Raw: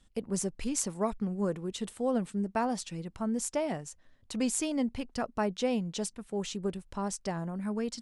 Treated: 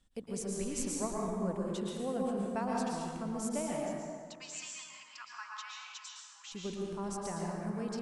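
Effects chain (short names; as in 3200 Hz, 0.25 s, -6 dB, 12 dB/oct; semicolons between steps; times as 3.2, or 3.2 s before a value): 3.83–6.52 Chebyshev band-pass 990–7500 Hz, order 5; plate-style reverb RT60 1.9 s, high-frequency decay 0.55×, pre-delay 0.1 s, DRR -3 dB; gain -7.5 dB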